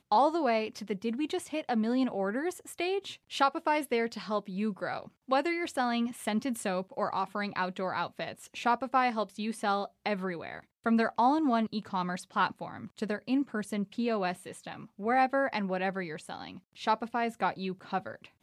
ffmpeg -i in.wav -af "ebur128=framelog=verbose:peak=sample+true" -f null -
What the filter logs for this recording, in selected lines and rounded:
Integrated loudness:
  I:         -31.5 LUFS
  Threshold: -41.7 LUFS
Loudness range:
  LRA:         2.1 LU
  Threshold: -51.7 LUFS
  LRA low:   -32.6 LUFS
  LRA high:  -30.5 LUFS
Sample peak:
  Peak:      -12.7 dBFS
True peak:
  Peak:      -12.7 dBFS